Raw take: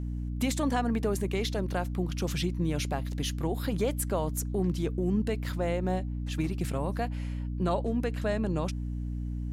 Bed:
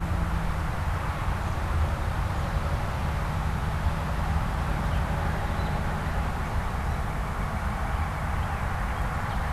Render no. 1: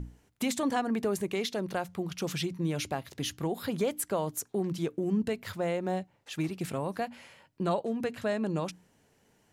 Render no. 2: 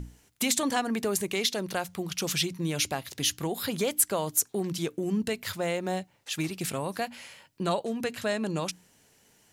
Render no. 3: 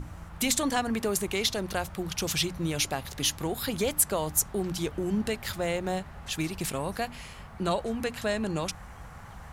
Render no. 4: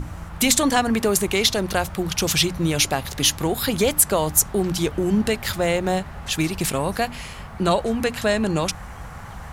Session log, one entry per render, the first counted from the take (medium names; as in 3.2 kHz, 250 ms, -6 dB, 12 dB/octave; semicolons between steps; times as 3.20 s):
hum notches 60/120/180/240/300 Hz
treble shelf 2.2 kHz +11.5 dB
add bed -16.5 dB
trim +8.5 dB; peak limiter -3 dBFS, peak gain reduction 2 dB